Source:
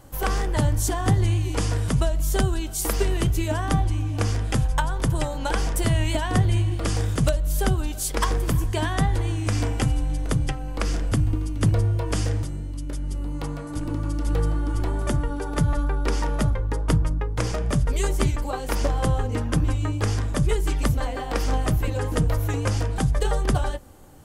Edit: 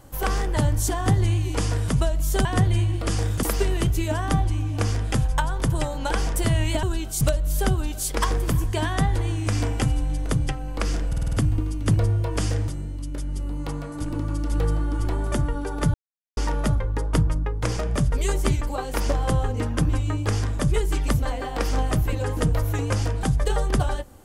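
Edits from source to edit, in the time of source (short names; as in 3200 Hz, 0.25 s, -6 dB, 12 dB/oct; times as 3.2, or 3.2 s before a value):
2.45–2.83 swap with 6.23–7.21
11.08 stutter 0.05 s, 6 plays
15.69–16.12 mute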